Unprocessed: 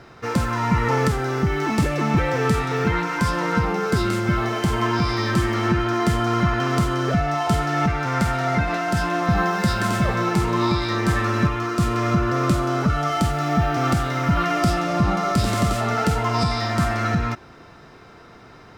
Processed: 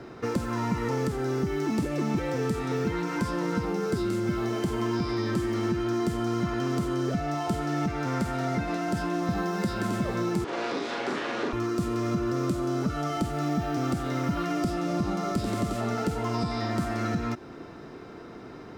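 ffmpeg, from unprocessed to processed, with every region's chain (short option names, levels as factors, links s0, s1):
-filter_complex "[0:a]asettb=1/sr,asplit=3[s0][s1][s2];[s0]atrim=end=10.444[s3];[s1]atrim=start=10.44:end=11.53,asetpts=PTS-STARTPTS,afade=t=in:d=0.004:c=qsin,afade=t=out:st=1.086:d=0.004:c=qsin,aeval=exprs='abs(val(0))':c=same,highpass=350,lowpass=5000,asplit=2[s4][s5];[s5]adelay=40,volume=0.794[s6];[s4][s6]amix=inputs=2:normalize=0,atrim=end_sample=48069[s7];[s2]atrim=start=11.526[s8];[s3][s7]acrossfade=d=0.004:c1=hsin:c2=qsin[s9];[s9][s8]acrossfade=d=0.004:c1=qsin:c2=hsin,equalizer=f=310:t=o:w=1.7:g=11,acrossover=split=190|4100[s10][s11][s12];[s10]acompressor=threshold=0.0316:ratio=4[s13];[s11]acompressor=threshold=0.0501:ratio=4[s14];[s12]acompressor=threshold=0.00794:ratio=4[s15];[s13][s14][s15]amix=inputs=3:normalize=0,volume=0.668"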